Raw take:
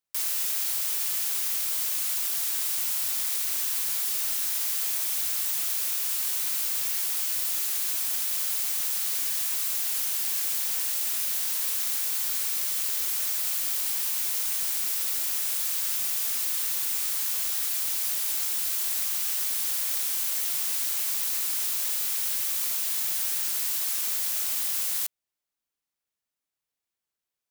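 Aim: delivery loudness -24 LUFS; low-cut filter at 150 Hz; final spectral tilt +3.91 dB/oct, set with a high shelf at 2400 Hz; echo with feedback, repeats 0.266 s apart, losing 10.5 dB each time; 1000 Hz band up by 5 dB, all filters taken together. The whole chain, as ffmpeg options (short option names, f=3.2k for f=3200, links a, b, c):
-af "highpass=150,equalizer=f=1k:t=o:g=5.5,highshelf=f=2.4k:g=4,aecho=1:1:266|532|798:0.299|0.0896|0.0269,volume=-3.5dB"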